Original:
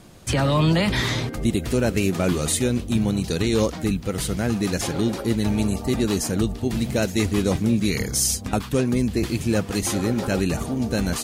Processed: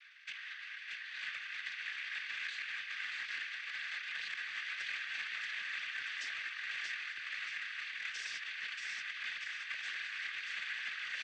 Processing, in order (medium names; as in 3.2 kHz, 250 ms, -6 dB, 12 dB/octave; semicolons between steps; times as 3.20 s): square wave that keeps the level; Chebyshev high-pass 1.7 kHz, order 6; distance through air 360 m; compressor with a negative ratio -42 dBFS, ratio -1; feedback delay 632 ms, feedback 43%, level -3.5 dB; saturation -31.5 dBFS, distortion -18 dB; noise-vocoded speech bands 16; treble shelf 5.2 kHz -9.5 dB; trim +1.5 dB